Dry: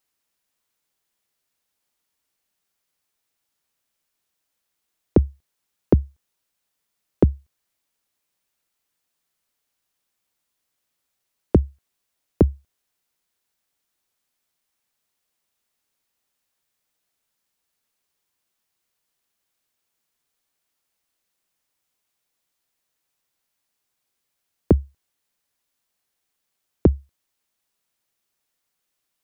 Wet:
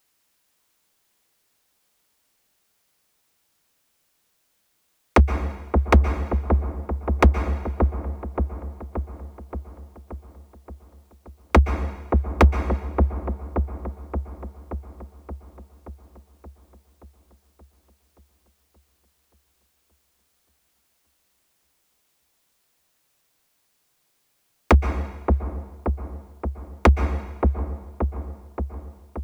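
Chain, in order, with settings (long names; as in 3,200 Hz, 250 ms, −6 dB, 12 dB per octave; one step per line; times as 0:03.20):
wave folding −15 dBFS
delay with a low-pass on its return 576 ms, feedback 62%, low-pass 930 Hz, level −4.5 dB
dense smooth reverb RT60 1.2 s, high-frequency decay 1×, pre-delay 110 ms, DRR 9.5 dB
level +8.5 dB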